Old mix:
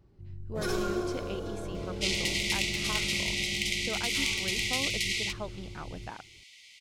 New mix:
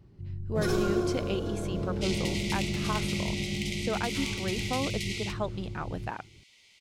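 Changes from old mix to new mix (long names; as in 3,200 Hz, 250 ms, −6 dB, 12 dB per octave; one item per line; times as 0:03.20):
speech +6.0 dB
first sound: add parametric band 150 Hz +8.5 dB 2.3 octaves
second sound −6.0 dB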